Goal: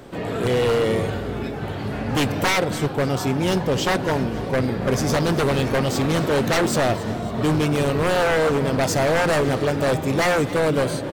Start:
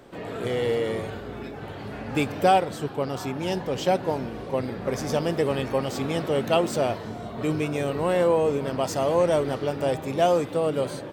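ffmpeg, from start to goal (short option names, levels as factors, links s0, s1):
-af "bass=f=250:g=4,treble=f=4000:g=2,aeval=exprs='0.0944*(abs(mod(val(0)/0.0944+3,4)-2)-1)':c=same,aecho=1:1:275|550|825|1100:0.141|0.0678|0.0325|0.0156,volume=2.11"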